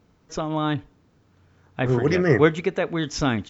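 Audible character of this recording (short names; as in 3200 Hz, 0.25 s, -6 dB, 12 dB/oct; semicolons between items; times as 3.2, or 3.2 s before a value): noise floor -61 dBFS; spectral tilt -5.5 dB/oct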